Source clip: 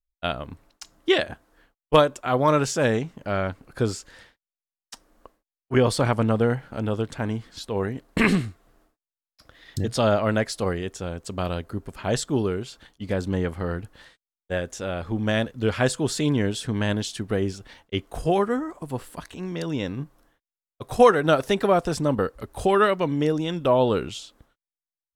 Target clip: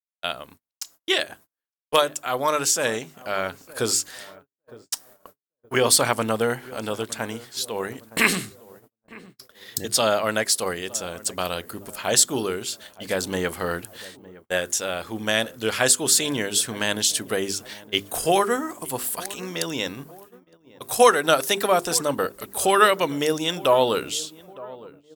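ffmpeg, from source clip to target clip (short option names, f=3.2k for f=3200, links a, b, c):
-filter_complex "[0:a]aemphasis=mode=production:type=riaa,dynaudnorm=f=240:g=11:m=13.5dB,bandreject=f=50:t=h:w=6,bandreject=f=100:t=h:w=6,bandreject=f=150:t=h:w=6,bandreject=f=200:t=h:w=6,bandreject=f=250:t=h:w=6,bandreject=f=300:t=h:w=6,bandreject=f=350:t=h:w=6,bandreject=f=400:t=h:w=6,asplit=2[a][b];[b]adelay=911,lowpass=f=1k:p=1,volume=-18.5dB,asplit=2[c][d];[d]adelay=911,lowpass=f=1k:p=1,volume=0.52,asplit=2[e][f];[f]adelay=911,lowpass=f=1k:p=1,volume=0.52,asplit=2[g][h];[h]adelay=911,lowpass=f=1k:p=1,volume=0.52[i];[a][c][e][g][i]amix=inputs=5:normalize=0,agate=range=-35dB:threshold=-45dB:ratio=16:detection=peak,volume=-2dB"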